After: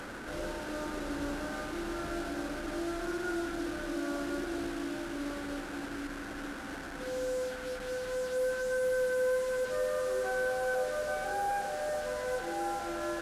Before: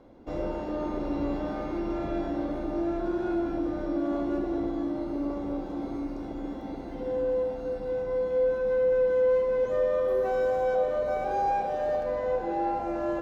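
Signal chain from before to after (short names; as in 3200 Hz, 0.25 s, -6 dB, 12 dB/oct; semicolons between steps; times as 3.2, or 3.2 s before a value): delta modulation 64 kbps, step -31.5 dBFS; bell 1500 Hz +13 dB 0.44 oct; gain -7 dB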